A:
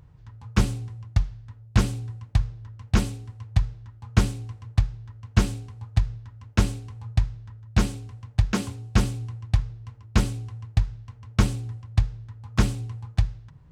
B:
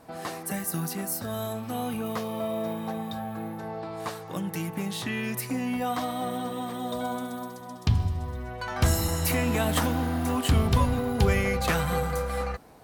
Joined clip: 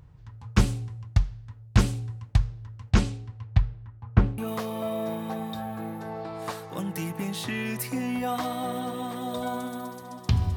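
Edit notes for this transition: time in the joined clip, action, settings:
A
2.90–4.38 s: low-pass 8.4 kHz -> 1.2 kHz
4.38 s: go over to B from 1.96 s

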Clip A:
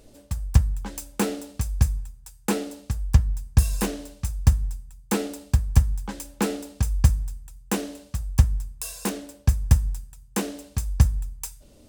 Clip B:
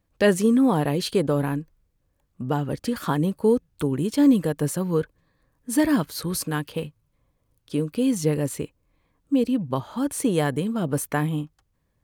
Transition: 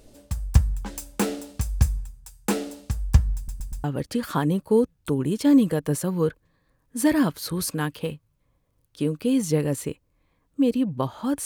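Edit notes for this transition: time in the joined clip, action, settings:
clip A
3.36 s: stutter in place 0.12 s, 4 plays
3.84 s: go over to clip B from 2.57 s

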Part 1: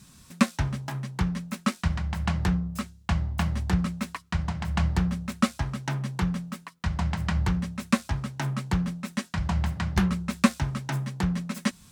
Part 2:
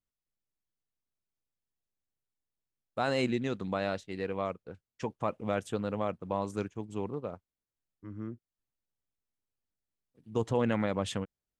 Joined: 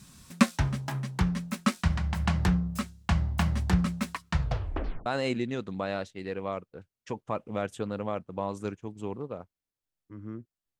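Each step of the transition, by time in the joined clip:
part 1
4.30 s: tape stop 0.76 s
5.06 s: go over to part 2 from 2.99 s

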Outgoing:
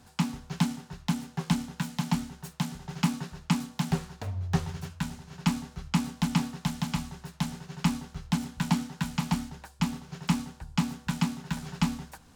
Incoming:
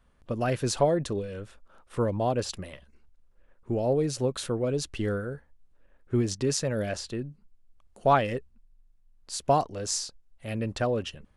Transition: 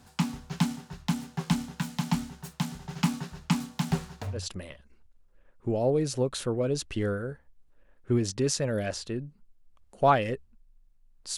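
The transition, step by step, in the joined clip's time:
outgoing
4.39 s: go over to incoming from 2.42 s, crossfade 0.20 s

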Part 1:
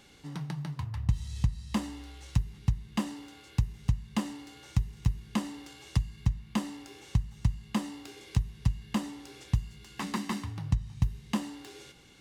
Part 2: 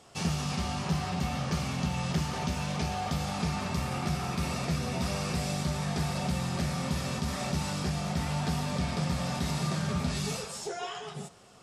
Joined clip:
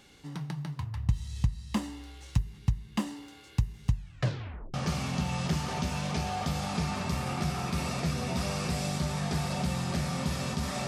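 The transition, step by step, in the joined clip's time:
part 1
3.91 s: tape stop 0.83 s
4.74 s: go over to part 2 from 1.39 s

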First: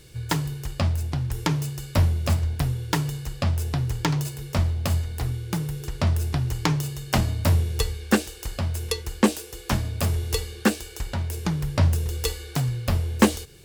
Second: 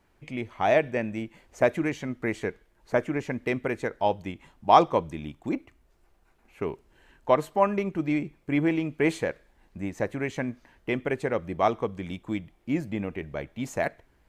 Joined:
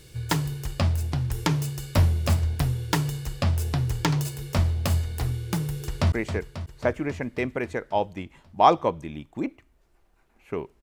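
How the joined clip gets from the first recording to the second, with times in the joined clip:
first
5.86–6.12 s: echo throw 270 ms, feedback 70%, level -9.5 dB
6.12 s: go over to second from 2.21 s

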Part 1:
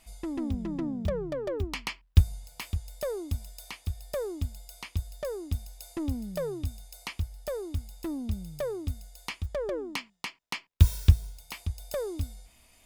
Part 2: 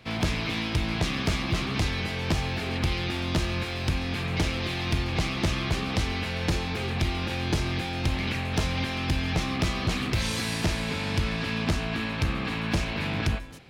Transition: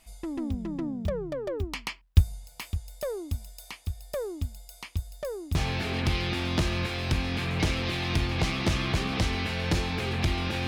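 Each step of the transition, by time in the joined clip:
part 1
5.55 s: go over to part 2 from 2.32 s

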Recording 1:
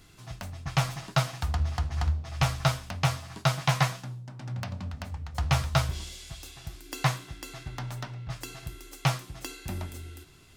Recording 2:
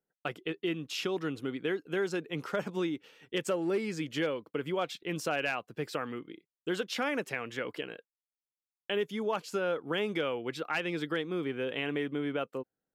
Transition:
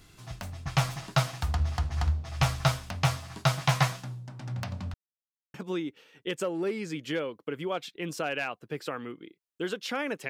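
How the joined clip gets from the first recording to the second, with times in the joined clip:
recording 1
4.94–5.54 s: mute
5.54 s: go over to recording 2 from 2.61 s

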